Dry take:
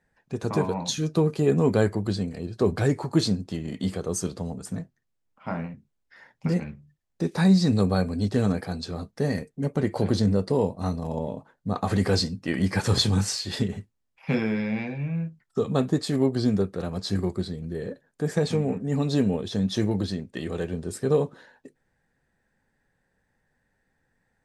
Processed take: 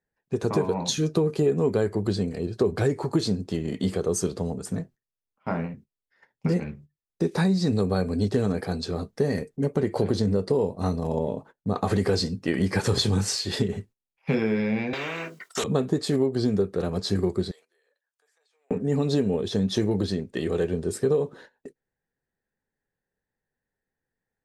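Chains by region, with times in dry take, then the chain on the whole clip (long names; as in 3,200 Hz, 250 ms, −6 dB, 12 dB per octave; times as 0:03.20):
0:14.93–0:15.64: high-pass filter 500 Hz + notch comb filter 840 Hz + every bin compressed towards the loudest bin 4 to 1
0:17.51–0:18.71: Bessel high-pass filter 1,200 Hz, order 4 + downward compressor 12 to 1, threshold −53 dBFS
whole clip: noise gate −48 dBFS, range −17 dB; parametric band 410 Hz +6.5 dB 0.52 octaves; downward compressor, threshold −21 dBFS; level +2 dB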